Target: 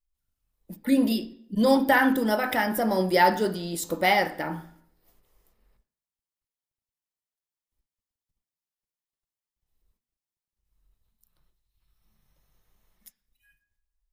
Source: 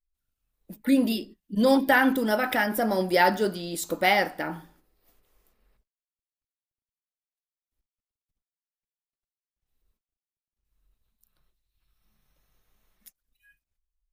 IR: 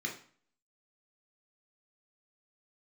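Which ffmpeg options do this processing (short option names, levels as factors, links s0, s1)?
-filter_complex "[0:a]asplit=2[s0][s1];[1:a]atrim=start_sample=2205,asetrate=31752,aresample=44100,lowpass=6000[s2];[s1][s2]afir=irnorm=-1:irlink=0,volume=0.2[s3];[s0][s3]amix=inputs=2:normalize=0"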